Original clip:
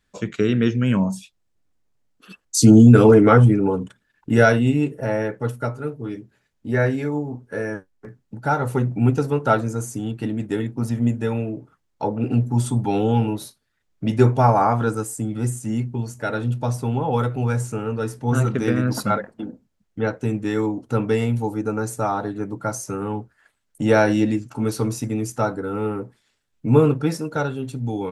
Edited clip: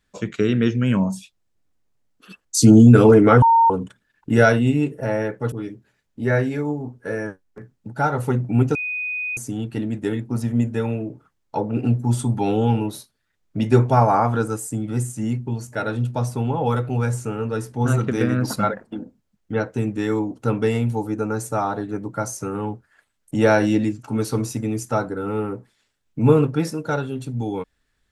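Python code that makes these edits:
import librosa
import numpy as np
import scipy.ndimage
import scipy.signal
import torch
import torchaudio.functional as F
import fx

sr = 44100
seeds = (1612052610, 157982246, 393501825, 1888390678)

y = fx.edit(x, sr, fx.bleep(start_s=3.42, length_s=0.28, hz=917.0, db=-10.5),
    fx.cut(start_s=5.52, length_s=0.47),
    fx.bleep(start_s=9.22, length_s=0.62, hz=2490.0, db=-23.5), tone=tone)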